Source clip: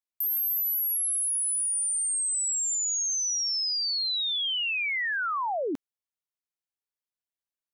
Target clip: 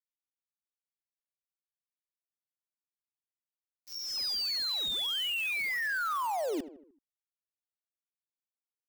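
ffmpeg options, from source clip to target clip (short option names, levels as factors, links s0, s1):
-filter_complex "[0:a]highpass=f=220:w=0.5412,highpass=f=220:w=1.3066,aresample=11025,asoftclip=type=tanh:threshold=0.0299,aresample=44100,acrusher=bits=6:mix=0:aa=0.000001,asplit=2[s0][s1];[s1]adelay=66,lowpass=f=1700:p=1,volume=0.224,asplit=2[s2][s3];[s3]adelay=66,lowpass=f=1700:p=1,volume=0.52,asplit=2[s4][s5];[s5]adelay=66,lowpass=f=1700:p=1,volume=0.52,asplit=2[s6][s7];[s7]adelay=66,lowpass=f=1700:p=1,volume=0.52,asplit=2[s8][s9];[s9]adelay=66,lowpass=f=1700:p=1,volume=0.52[s10];[s0][s2][s4][s6][s8][s10]amix=inputs=6:normalize=0,atempo=0.87"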